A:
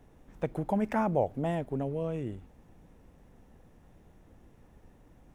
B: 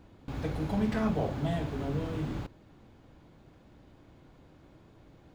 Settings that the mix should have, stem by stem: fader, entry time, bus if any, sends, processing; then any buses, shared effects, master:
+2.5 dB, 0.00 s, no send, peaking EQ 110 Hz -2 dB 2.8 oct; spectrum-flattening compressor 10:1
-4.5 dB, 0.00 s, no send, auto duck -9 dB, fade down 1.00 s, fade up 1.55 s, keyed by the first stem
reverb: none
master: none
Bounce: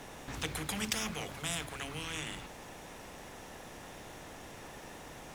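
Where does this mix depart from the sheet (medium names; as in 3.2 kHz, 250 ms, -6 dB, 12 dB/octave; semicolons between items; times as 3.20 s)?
stem A +2.5 dB -> -4.0 dB; master: extra peaking EQ 5.2 kHz +8.5 dB 2.8 oct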